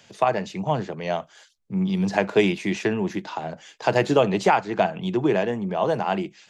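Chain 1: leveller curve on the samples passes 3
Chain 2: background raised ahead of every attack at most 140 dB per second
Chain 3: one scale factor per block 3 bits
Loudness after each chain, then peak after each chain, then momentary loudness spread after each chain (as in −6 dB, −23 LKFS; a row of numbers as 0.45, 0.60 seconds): −15.5, −23.0, −23.5 LKFS; −4.5, −4.5, −6.0 dBFS; 8, 10, 9 LU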